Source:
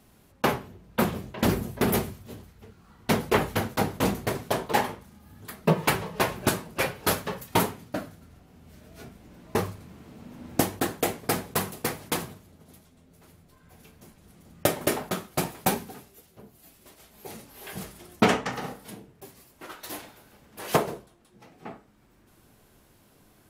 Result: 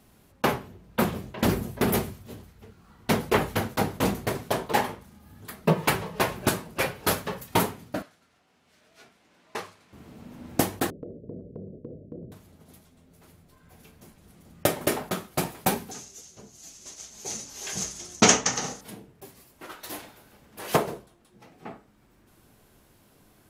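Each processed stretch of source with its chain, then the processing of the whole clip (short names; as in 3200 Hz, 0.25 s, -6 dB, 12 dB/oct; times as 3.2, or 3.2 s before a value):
8.02–9.93 HPF 1400 Hz 6 dB/oct + air absorption 53 m
10.9–12.32 steep low-pass 590 Hz 72 dB/oct + compressor 4:1, threshold -36 dBFS
15.91–18.81 synth low-pass 6400 Hz, resonance Q 7.5 + high shelf 4000 Hz +9.5 dB
whole clip: dry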